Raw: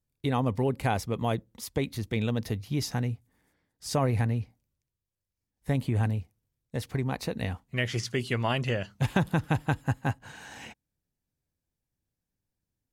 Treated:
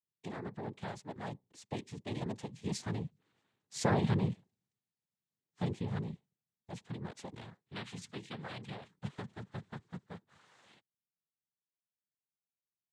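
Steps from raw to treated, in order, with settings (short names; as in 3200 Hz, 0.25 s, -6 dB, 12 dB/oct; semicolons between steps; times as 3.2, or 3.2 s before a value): Doppler pass-by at 4.19, 11 m/s, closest 11 m; noise vocoder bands 6; gain -3 dB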